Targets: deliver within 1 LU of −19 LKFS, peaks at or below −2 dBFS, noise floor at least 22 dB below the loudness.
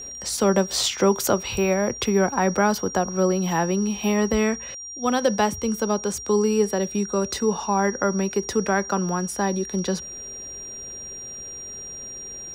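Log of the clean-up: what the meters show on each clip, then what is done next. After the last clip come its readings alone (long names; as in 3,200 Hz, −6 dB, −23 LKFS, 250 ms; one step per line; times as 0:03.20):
interfering tone 5,700 Hz; level of the tone −34 dBFS; integrated loudness −23.5 LKFS; sample peak −6.0 dBFS; target loudness −19.0 LKFS
→ notch filter 5,700 Hz, Q 30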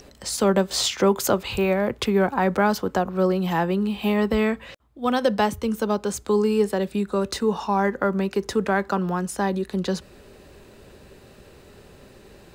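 interfering tone none found; integrated loudness −23.0 LKFS; sample peak −6.5 dBFS; target loudness −19.0 LKFS
→ level +4 dB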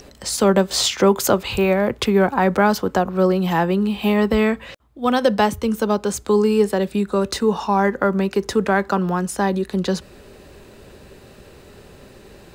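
integrated loudness −19.0 LKFS; sample peak −2.5 dBFS; background noise floor −45 dBFS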